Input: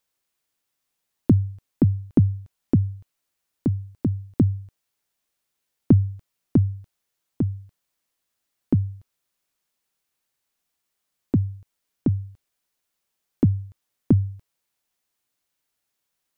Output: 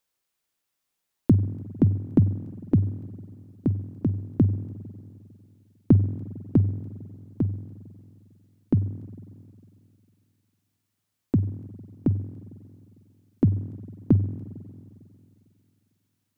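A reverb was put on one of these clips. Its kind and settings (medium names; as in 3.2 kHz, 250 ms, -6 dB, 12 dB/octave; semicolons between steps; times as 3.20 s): spring tank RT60 2.6 s, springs 45/50 ms, chirp 30 ms, DRR 12.5 dB; trim -1.5 dB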